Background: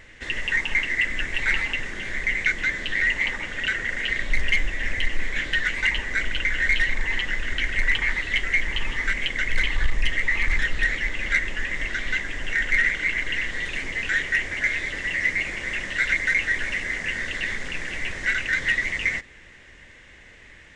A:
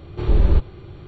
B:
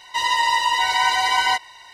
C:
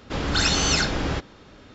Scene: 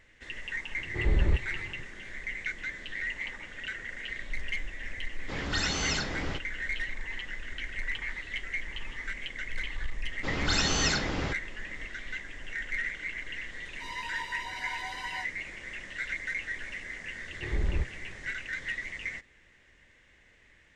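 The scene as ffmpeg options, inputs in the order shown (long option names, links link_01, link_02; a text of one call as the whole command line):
ffmpeg -i bed.wav -i cue0.wav -i cue1.wav -i cue2.wav -filter_complex "[1:a]asplit=2[link_01][link_02];[3:a]asplit=2[link_03][link_04];[0:a]volume=-12.5dB[link_05];[link_04]highpass=42[link_06];[2:a]flanger=delay=17.5:depth=2.5:speed=2.1[link_07];[link_01]atrim=end=1.07,asetpts=PTS-STARTPTS,volume=-9dB,afade=type=in:duration=0.004:curve=hsin,afade=type=out:start_time=1.066:duration=0.004:curve=hsin,adelay=770[link_08];[link_03]atrim=end=1.74,asetpts=PTS-STARTPTS,volume=-9.5dB,afade=type=in:duration=0.004:curve=hsin,afade=type=out:start_time=1.736:duration=0.004:curve=hsin,adelay=5180[link_09];[link_06]atrim=end=1.74,asetpts=PTS-STARTPTS,volume=-6dB,afade=type=in:duration=0.004:curve=hsin,afade=type=out:start_time=1.736:duration=0.004:curve=hsin,adelay=10130[link_10];[link_07]atrim=end=1.93,asetpts=PTS-STARTPTS,volume=-18dB,afade=type=in:duration=0.004:curve=hsin,afade=type=out:start_time=1.926:duration=0.004:curve=hsin,adelay=13660[link_11];[link_02]atrim=end=1.07,asetpts=PTS-STARTPTS,volume=-13.5dB,afade=type=in:duration=0.004:curve=hsin,afade=type=out:start_time=1.066:duration=0.004:curve=hsin,adelay=17240[link_12];[link_05][link_08][link_09][link_10][link_11][link_12]amix=inputs=6:normalize=0" out.wav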